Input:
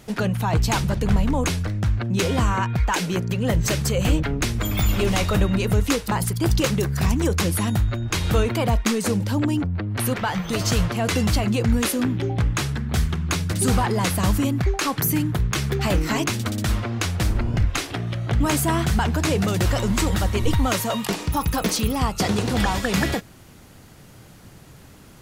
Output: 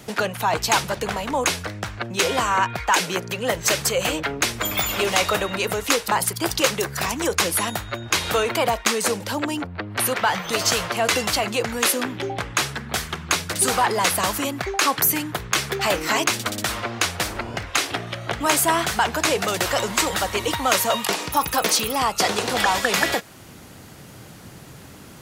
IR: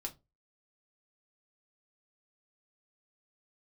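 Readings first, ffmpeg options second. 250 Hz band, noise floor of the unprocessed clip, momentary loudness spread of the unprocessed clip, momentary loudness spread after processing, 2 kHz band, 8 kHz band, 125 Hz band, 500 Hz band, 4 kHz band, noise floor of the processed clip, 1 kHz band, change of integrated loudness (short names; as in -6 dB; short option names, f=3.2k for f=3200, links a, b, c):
-6.5 dB, -46 dBFS, 4 LU, 7 LU, +5.5 dB, +5.5 dB, -12.5 dB, +2.0 dB, +5.5 dB, -43 dBFS, +5.0 dB, +0.5 dB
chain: -filter_complex "[0:a]highpass=f=110:p=1,acrossover=split=420|710|5200[a][b][c][d];[a]acompressor=threshold=-40dB:ratio=6[e];[e][b][c][d]amix=inputs=4:normalize=0,volume=5.5dB"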